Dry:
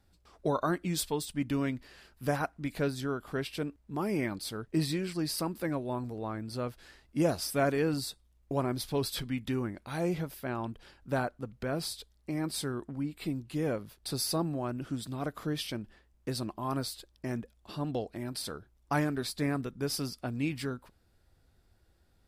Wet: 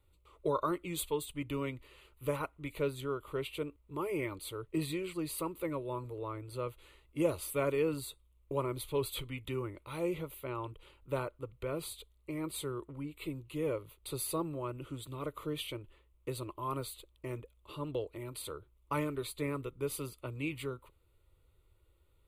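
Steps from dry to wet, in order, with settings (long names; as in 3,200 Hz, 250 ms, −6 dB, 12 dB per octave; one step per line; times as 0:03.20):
phaser with its sweep stopped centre 1,100 Hz, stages 8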